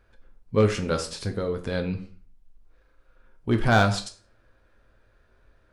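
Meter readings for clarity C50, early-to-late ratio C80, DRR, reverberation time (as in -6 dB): 12.5 dB, 16.5 dB, 5.0 dB, 0.45 s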